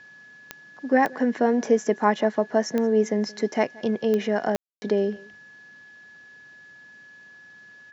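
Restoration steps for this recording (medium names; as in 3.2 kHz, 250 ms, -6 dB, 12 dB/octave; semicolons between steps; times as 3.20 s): de-click; band-stop 1.7 kHz, Q 30; room tone fill 4.56–4.82 s; inverse comb 175 ms -23.5 dB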